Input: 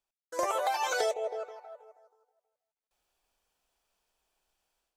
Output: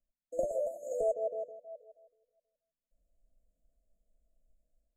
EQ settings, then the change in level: brick-wall FIR band-stop 700–6400 Hz; RIAA curve playback; static phaser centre 380 Hz, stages 6; 0.0 dB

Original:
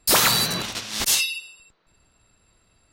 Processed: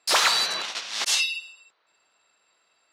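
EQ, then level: band-pass 640–6200 Hz; 0.0 dB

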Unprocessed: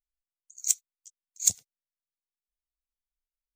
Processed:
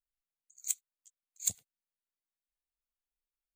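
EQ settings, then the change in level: peaking EQ 5.6 kHz -15 dB 0.39 oct; -4.5 dB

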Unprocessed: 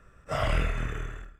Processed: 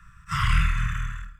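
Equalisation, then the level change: Chebyshev band-stop 190–1000 Hz, order 5; +6.5 dB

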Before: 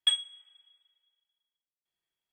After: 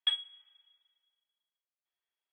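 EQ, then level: high-pass 560 Hz; distance through air 190 m; 0.0 dB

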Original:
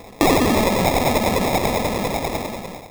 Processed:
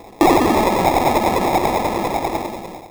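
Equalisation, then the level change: peaking EQ 830 Hz +7 dB 0.63 oct; dynamic bell 1.3 kHz, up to +4 dB, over -25 dBFS, Q 0.81; peaking EQ 340 Hz +10.5 dB 0.35 oct; -3.0 dB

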